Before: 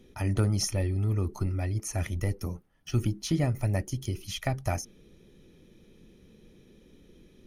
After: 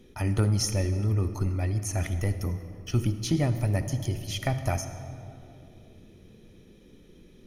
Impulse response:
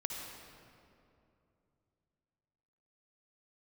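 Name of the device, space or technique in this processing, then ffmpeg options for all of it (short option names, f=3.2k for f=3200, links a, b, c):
saturated reverb return: -filter_complex "[0:a]asplit=2[a][b];[1:a]atrim=start_sample=2205[c];[b][c]afir=irnorm=-1:irlink=0,asoftclip=type=tanh:threshold=-19.5dB,volume=-4.5dB[d];[a][d]amix=inputs=2:normalize=0,volume=-1.5dB"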